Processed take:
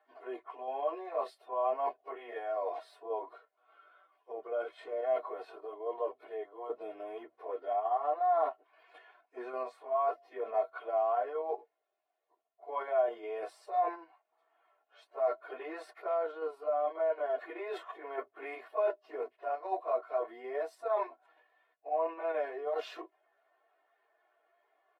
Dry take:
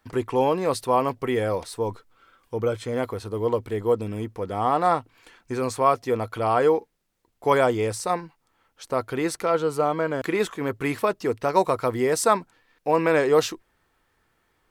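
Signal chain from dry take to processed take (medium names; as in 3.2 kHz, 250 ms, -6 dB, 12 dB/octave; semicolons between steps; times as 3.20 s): reverse; compression 16:1, threshold -28 dBFS, peak gain reduction 16 dB; reverse; ladder high-pass 560 Hz, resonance 70%; distance through air 460 m; plain phase-vocoder stretch 1.7×; in parallel at 0 dB: level held to a coarse grid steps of 11 dB; on the sum: treble shelf 7.3 kHz +10.5 dB; comb 2.8 ms, depth 93%; trim +3 dB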